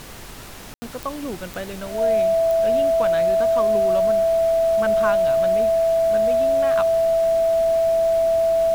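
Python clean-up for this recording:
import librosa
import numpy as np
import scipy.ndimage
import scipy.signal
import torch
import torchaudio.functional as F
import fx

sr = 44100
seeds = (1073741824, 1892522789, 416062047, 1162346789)

y = fx.fix_declick_ar(x, sr, threshold=10.0)
y = fx.notch(y, sr, hz=660.0, q=30.0)
y = fx.fix_ambience(y, sr, seeds[0], print_start_s=1.34, print_end_s=1.84, start_s=0.74, end_s=0.82)
y = fx.noise_reduce(y, sr, print_start_s=0.24, print_end_s=0.74, reduce_db=30.0)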